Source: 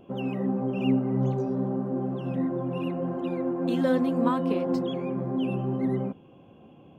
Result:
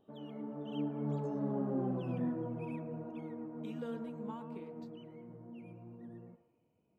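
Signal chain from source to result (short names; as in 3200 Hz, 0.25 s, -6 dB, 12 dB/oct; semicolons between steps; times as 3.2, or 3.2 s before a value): Doppler pass-by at 1.84, 39 m/s, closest 19 m; band-limited delay 0.114 s, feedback 41%, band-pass 920 Hz, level -8.5 dB; gain -5.5 dB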